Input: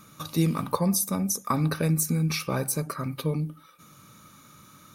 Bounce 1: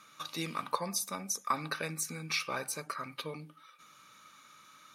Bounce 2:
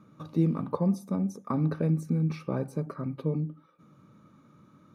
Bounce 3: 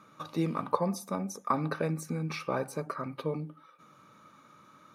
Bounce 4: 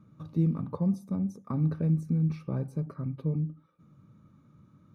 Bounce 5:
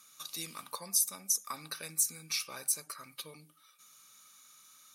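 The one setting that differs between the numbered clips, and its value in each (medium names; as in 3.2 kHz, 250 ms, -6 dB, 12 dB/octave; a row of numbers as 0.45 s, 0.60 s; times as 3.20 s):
band-pass filter, frequency: 2.4 kHz, 270 Hz, 760 Hz, 110 Hz, 7.5 kHz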